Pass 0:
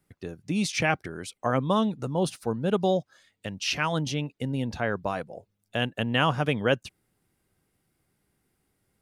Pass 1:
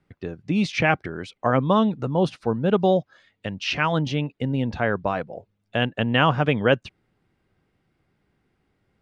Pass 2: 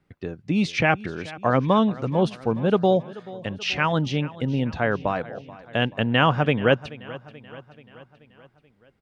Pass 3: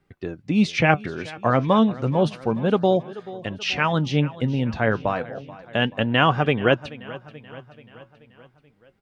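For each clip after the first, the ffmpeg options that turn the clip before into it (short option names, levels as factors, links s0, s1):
-af "lowpass=3300,volume=1.78"
-af "aecho=1:1:432|864|1296|1728|2160:0.119|0.0666|0.0373|0.0209|0.0117"
-af "flanger=delay=2.5:depth=6.5:regen=65:speed=0.31:shape=sinusoidal,volume=1.88"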